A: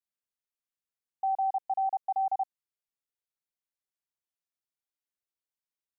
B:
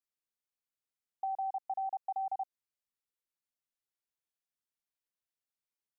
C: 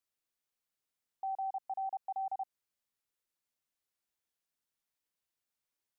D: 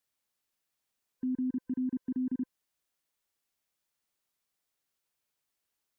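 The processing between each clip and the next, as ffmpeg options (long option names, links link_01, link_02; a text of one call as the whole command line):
ffmpeg -i in.wav -af "acompressor=threshold=-30dB:ratio=6,volume=-3dB" out.wav
ffmpeg -i in.wav -af "alimiter=level_in=12dB:limit=-24dB:level=0:latency=1,volume=-12dB,volume=3.5dB" out.wav
ffmpeg -i in.wav -af "afftfilt=real='real(if(lt(b,1008),b+24*(1-2*mod(floor(b/24),2)),b),0)':imag='imag(if(lt(b,1008),b+24*(1-2*mod(floor(b/24),2)),b),0)':win_size=2048:overlap=0.75,volume=5dB" out.wav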